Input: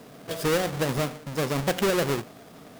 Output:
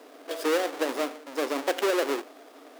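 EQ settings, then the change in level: elliptic high-pass 280 Hz, stop band 40 dB; high shelf 5700 Hz -5 dB; 0.0 dB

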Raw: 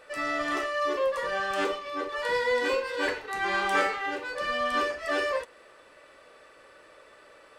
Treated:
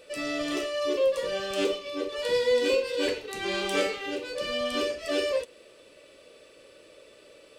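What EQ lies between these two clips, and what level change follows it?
low shelf 68 Hz -6 dB; band shelf 1200 Hz -13.5 dB; +4.5 dB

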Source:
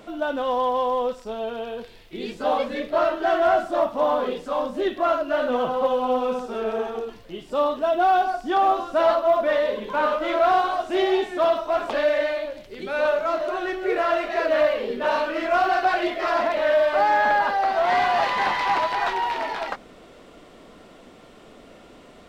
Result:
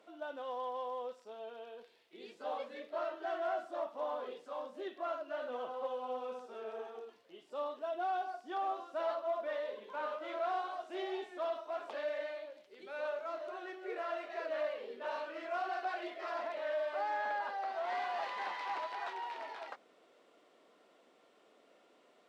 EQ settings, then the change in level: band-pass 390 Hz, Q 0.87; differentiator; +6.5 dB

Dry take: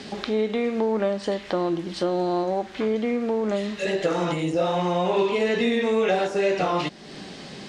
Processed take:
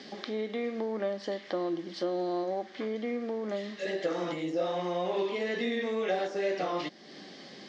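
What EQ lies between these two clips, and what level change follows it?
speaker cabinet 320–5400 Hz, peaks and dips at 430 Hz -6 dB, 650 Hz -4 dB, 930 Hz -10 dB, 1400 Hz -8 dB, 2600 Hz -10 dB, 3900 Hz -5 dB; -2.5 dB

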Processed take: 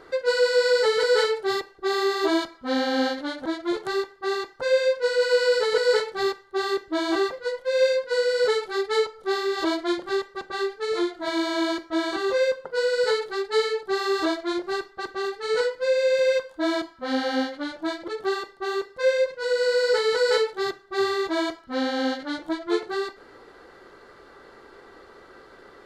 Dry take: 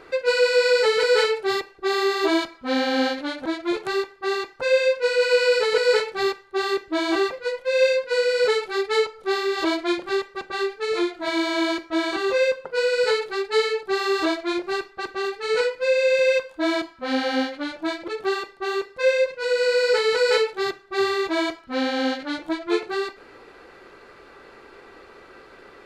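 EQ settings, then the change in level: bell 2500 Hz -13.5 dB 0.23 oct; -1.5 dB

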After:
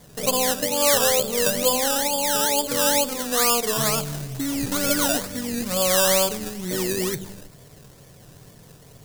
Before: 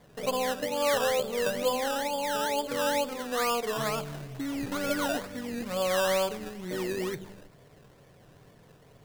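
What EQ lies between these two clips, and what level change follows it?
tone controls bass +5 dB, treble +13 dB; +4.5 dB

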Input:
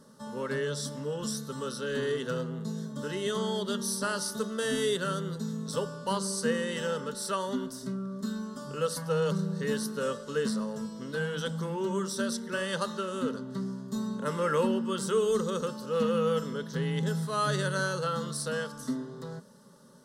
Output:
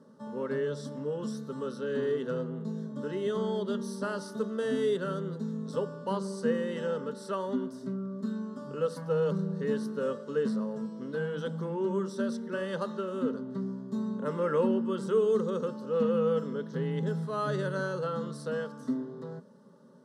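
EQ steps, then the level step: HPF 270 Hz 12 dB/oct; tilt -4 dB/oct; high shelf 12000 Hz -4 dB; -3.0 dB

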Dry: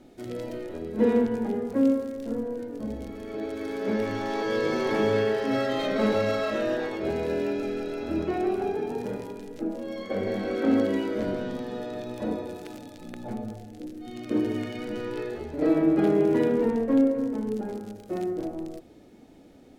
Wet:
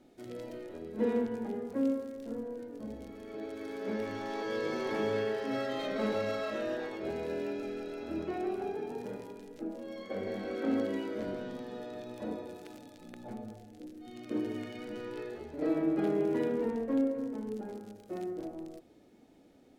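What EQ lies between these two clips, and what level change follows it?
low shelf 120 Hz -6 dB; -7.5 dB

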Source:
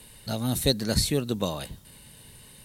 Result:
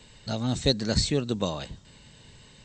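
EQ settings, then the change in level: brick-wall FIR low-pass 8200 Hz; 0.0 dB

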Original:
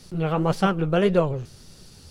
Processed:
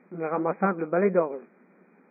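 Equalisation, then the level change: brick-wall FIR band-pass 180–2500 Hz; -2.0 dB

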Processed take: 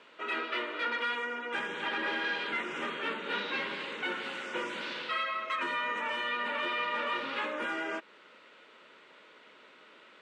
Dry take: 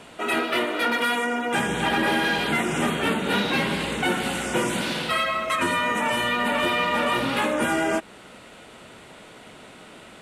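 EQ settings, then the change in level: HPF 490 Hz 12 dB/oct; air absorption 180 m; bell 730 Hz -14 dB 0.36 oct; -6.0 dB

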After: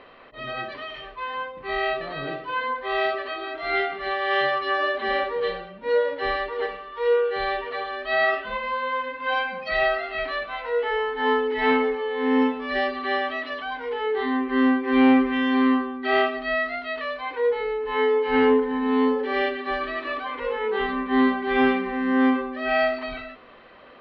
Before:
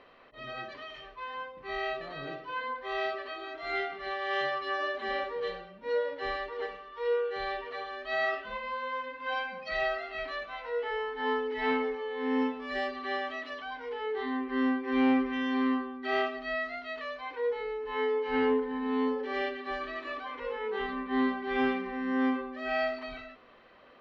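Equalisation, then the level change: LPF 4600 Hz 24 dB/oct; +8.5 dB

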